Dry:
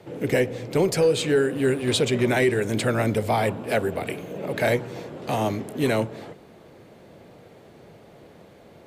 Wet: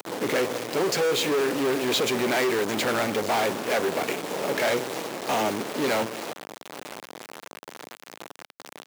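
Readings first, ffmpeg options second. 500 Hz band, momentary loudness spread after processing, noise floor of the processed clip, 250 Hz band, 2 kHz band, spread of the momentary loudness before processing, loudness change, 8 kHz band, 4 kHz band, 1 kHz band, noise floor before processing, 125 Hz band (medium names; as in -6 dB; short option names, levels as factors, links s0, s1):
-2.5 dB, 20 LU, -60 dBFS, -3.5 dB, +0.5 dB, 12 LU, -1.5 dB, +2.5 dB, +3.0 dB, +1.5 dB, -50 dBFS, -12.0 dB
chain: -filter_complex "[0:a]aresample=16000,asoftclip=type=hard:threshold=0.0631,aresample=44100,aeval=exprs='0.106*(cos(1*acos(clip(val(0)/0.106,-1,1)))-cos(1*PI/2))+0.0168*(cos(6*acos(clip(val(0)/0.106,-1,1)))-cos(6*PI/2))':c=same,asplit=2[s0][s1];[s1]adelay=942,lowpass=f=1800:p=1,volume=0.0891,asplit=2[s2][s3];[s3]adelay=942,lowpass=f=1800:p=1,volume=0.38,asplit=2[s4][s5];[s5]adelay=942,lowpass=f=1800:p=1,volume=0.38[s6];[s0][s2][s4][s6]amix=inputs=4:normalize=0,asplit=2[s7][s8];[s8]acompressor=mode=upward:threshold=0.0251:ratio=2.5,volume=1.06[s9];[s7][s9]amix=inputs=2:normalize=0,acrusher=bits=4:mix=0:aa=0.000001,highpass=260,asoftclip=type=tanh:threshold=0.266,volume=0.794"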